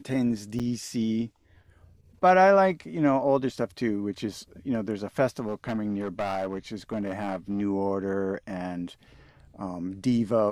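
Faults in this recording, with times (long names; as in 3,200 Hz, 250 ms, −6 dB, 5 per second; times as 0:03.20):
0:00.59–0:00.60: drop-out 7 ms
0:05.48–0:07.62: clipping −24.5 dBFS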